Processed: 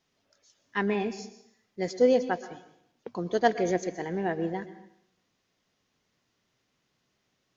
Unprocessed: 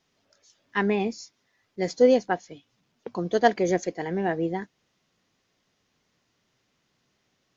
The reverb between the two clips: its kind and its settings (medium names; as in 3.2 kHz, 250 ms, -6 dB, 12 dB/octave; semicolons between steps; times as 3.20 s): plate-style reverb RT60 0.73 s, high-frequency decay 0.95×, pre-delay 105 ms, DRR 12.5 dB; trim -3.5 dB